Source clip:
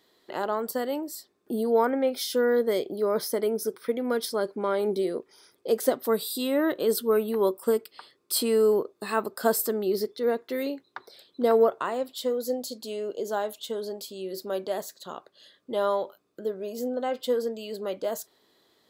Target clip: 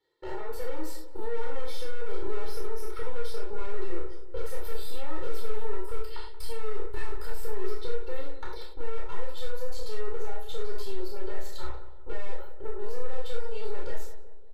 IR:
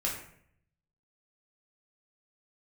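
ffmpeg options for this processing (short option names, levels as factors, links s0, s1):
-filter_complex "[0:a]tremolo=f=1:d=0.66,agate=range=0.112:threshold=0.00224:ratio=16:detection=peak,aeval=exprs='(tanh(100*val(0)+0.4)-tanh(0.4))/100':c=same,asubboost=boost=4.5:cutoff=94,acompressor=threshold=0.00794:ratio=5,atempo=1.3,aemphasis=mode=reproduction:type=cd,asplit=2[s0][s1];[s1]adelay=181,lowpass=f=1300:p=1,volume=0.266,asplit=2[s2][s3];[s3]adelay=181,lowpass=f=1300:p=1,volume=0.53,asplit=2[s4][s5];[s5]adelay=181,lowpass=f=1300:p=1,volume=0.53,asplit=2[s6][s7];[s7]adelay=181,lowpass=f=1300:p=1,volume=0.53,asplit=2[s8][s9];[s9]adelay=181,lowpass=f=1300:p=1,volume=0.53,asplit=2[s10][s11];[s11]adelay=181,lowpass=f=1300:p=1,volume=0.53[s12];[s0][s2][s4][s6][s8][s10][s12]amix=inputs=7:normalize=0[s13];[1:a]atrim=start_sample=2205,atrim=end_sample=3528,asetrate=29988,aresample=44100[s14];[s13][s14]afir=irnorm=-1:irlink=0,acrossover=split=440[s15][s16];[s16]acompressor=threshold=0.00794:ratio=6[s17];[s15][s17]amix=inputs=2:normalize=0,aecho=1:1:2.2:0.82,volume=1.12"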